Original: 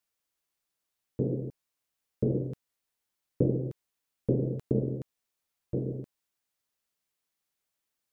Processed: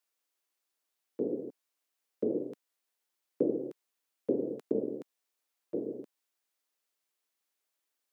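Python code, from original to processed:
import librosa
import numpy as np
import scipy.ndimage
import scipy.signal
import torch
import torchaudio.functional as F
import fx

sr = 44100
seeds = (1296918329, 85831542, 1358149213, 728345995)

y = scipy.signal.sosfilt(scipy.signal.butter(4, 260.0, 'highpass', fs=sr, output='sos'), x)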